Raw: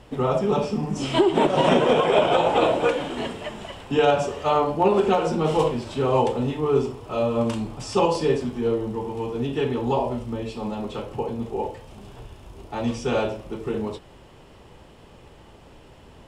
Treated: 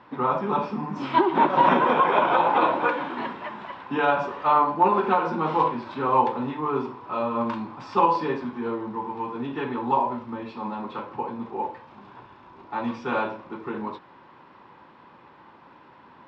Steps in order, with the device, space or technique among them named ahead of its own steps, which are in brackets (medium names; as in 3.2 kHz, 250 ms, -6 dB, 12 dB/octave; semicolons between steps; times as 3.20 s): kitchen radio (cabinet simulation 230–3700 Hz, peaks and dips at 440 Hz -9 dB, 650 Hz -7 dB, 1 kHz +10 dB, 1.5 kHz +5 dB, 3 kHz -10 dB)